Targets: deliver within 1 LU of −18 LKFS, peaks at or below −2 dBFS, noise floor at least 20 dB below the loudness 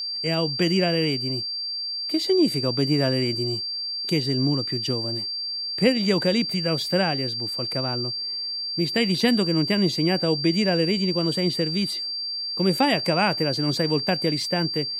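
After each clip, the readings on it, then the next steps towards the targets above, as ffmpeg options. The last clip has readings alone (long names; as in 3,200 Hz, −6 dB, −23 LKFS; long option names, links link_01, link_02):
interfering tone 4,700 Hz; level of the tone −27 dBFS; integrated loudness −23.0 LKFS; sample peak −6.0 dBFS; target loudness −18.0 LKFS
→ -af "bandreject=frequency=4700:width=30"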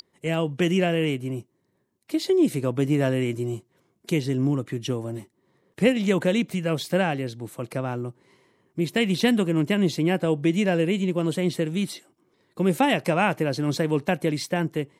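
interfering tone none found; integrated loudness −24.5 LKFS; sample peak −6.5 dBFS; target loudness −18.0 LKFS
→ -af "volume=6.5dB,alimiter=limit=-2dB:level=0:latency=1"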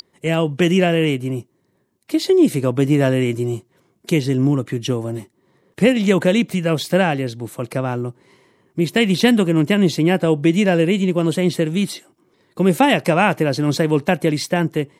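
integrated loudness −18.0 LKFS; sample peak −2.0 dBFS; background noise floor −64 dBFS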